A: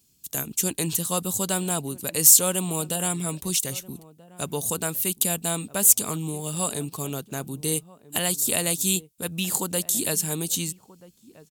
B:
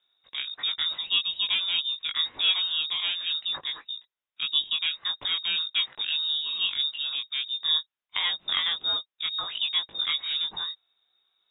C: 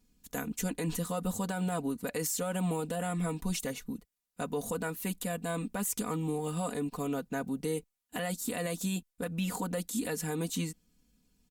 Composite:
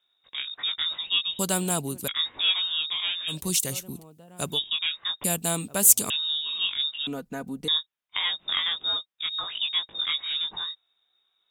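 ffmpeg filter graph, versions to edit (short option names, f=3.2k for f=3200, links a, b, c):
-filter_complex "[0:a]asplit=3[a][b][c];[1:a]asplit=5[d][e][f][g][h];[d]atrim=end=1.392[i];[a]atrim=start=1.388:end=2.082[j];[e]atrim=start=2.078:end=3.37[k];[b]atrim=start=3.27:end=4.6[l];[f]atrim=start=4.5:end=5.242[m];[c]atrim=start=5.238:end=6.102[n];[g]atrim=start=6.098:end=7.072[o];[2:a]atrim=start=7.068:end=7.682[p];[h]atrim=start=7.678[q];[i][j]acrossfade=d=0.004:c1=hsin:c2=hsin[r];[r][k]acrossfade=d=0.004:c1=hsin:c2=hsin[s];[s][l]acrossfade=d=0.1:c1=tri:c2=tri[t];[t][m]acrossfade=d=0.1:c1=tri:c2=tri[u];[u][n]acrossfade=d=0.004:c1=hsin:c2=hsin[v];[v][o]acrossfade=d=0.004:c1=hsin:c2=hsin[w];[w][p]acrossfade=d=0.004:c1=hsin:c2=hsin[x];[x][q]acrossfade=d=0.004:c1=hsin:c2=hsin"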